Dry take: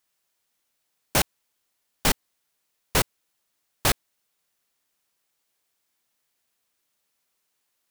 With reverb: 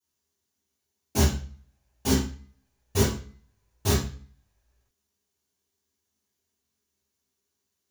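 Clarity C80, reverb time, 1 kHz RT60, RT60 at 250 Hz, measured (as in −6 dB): 10.0 dB, 0.45 s, 0.40 s, 0.55 s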